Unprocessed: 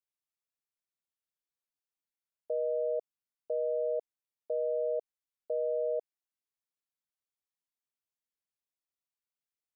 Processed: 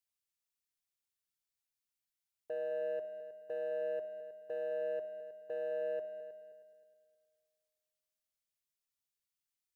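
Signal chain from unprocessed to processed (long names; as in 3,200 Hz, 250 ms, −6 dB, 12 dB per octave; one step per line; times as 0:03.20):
parametric band 530 Hz −13.5 dB 2.9 octaves
leveller curve on the samples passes 1
echo machine with several playback heads 105 ms, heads second and third, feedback 40%, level −13.5 dB
on a send at −14.5 dB: convolution reverb, pre-delay 46 ms
on the sum: level +5.5 dB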